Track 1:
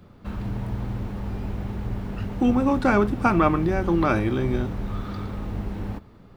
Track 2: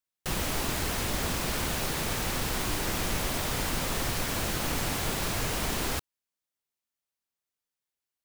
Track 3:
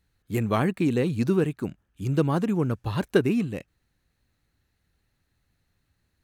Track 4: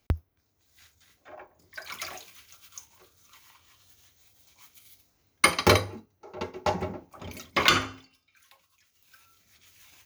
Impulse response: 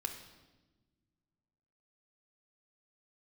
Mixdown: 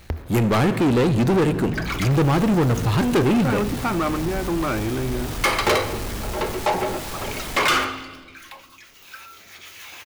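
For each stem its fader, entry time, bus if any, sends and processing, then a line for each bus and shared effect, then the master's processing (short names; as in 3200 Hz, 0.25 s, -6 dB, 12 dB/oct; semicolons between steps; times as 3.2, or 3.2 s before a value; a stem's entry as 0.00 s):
-9.5 dB, 0.60 s, no send, notches 50/100/150/200 Hz
-16.0 dB, 1.85 s, send -8 dB, dry
+2.5 dB, 0.00 s, send -7 dB, notches 50/100 Hz
+2.5 dB, 0.00 s, send -13 dB, tone controls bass -13 dB, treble -9 dB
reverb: on, RT60 1.2 s, pre-delay 8 ms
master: power-law curve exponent 0.7; soft clip -14.5 dBFS, distortion -11 dB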